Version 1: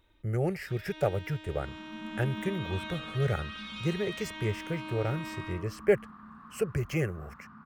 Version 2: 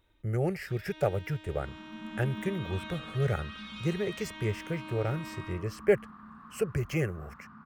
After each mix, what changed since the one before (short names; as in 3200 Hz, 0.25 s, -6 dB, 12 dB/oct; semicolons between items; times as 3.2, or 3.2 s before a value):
first sound -3.0 dB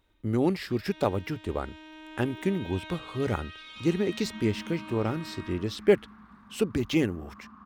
speech: remove fixed phaser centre 1000 Hz, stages 6; second sound: entry +2.20 s; master: add bell 140 Hz -14 dB 0.25 oct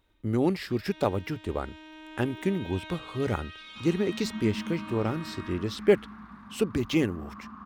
second sound +6.0 dB